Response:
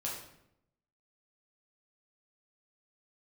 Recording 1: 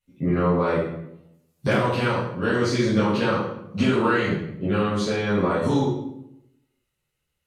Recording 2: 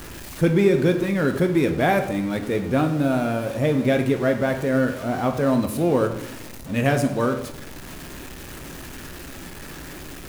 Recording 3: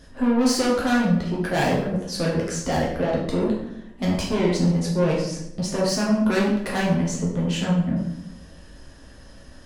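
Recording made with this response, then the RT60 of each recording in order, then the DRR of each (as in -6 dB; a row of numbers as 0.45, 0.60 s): 3; 0.80, 0.80, 0.80 s; -12.0, 5.0, -4.5 dB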